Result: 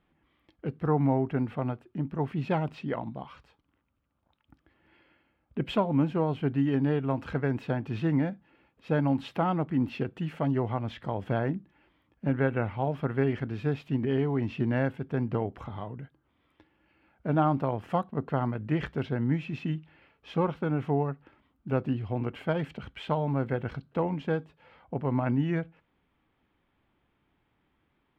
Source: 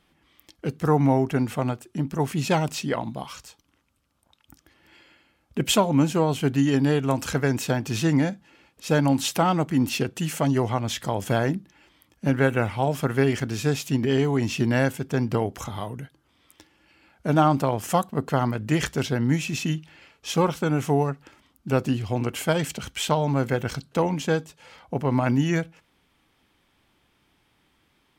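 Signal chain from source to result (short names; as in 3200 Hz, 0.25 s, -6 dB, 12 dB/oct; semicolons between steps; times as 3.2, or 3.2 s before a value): air absorption 450 m; gain -4.5 dB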